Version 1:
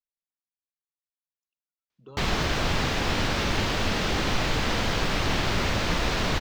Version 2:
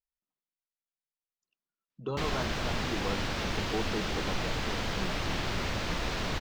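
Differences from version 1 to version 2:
speech +12.0 dB; background -7.0 dB

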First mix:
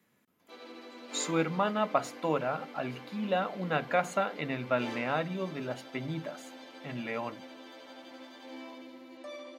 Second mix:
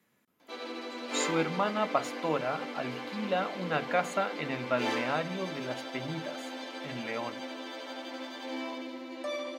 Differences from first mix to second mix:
background +9.0 dB; master: add bass shelf 350 Hz -2.5 dB

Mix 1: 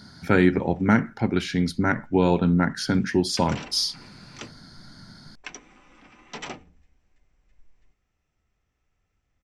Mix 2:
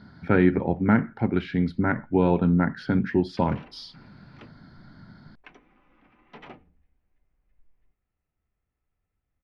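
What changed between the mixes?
background -6.0 dB; master: add distance through air 410 m

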